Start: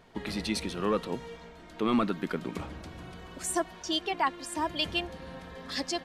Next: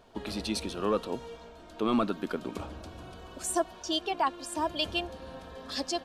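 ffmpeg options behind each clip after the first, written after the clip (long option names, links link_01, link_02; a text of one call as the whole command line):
ffmpeg -i in.wav -af "equalizer=frequency=160:width_type=o:width=0.33:gain=-11,equalizer=frequency=630:width_type=o:width=0.33:gain=4,equalizer=frequency=2000:width_type=o:width=0.33:gain=-11" out.wav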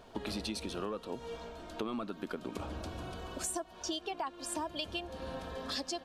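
ffmpeg -i in.wav -af "acompressor=threshold=-37dB:ratio=12,volume=3dB" out.wav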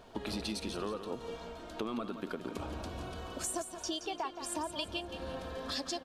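ffmpeg -i in.wav -af "aecho=1:1:172|344|516|688:0.335|0.114|0.0387|0.0132" out.wav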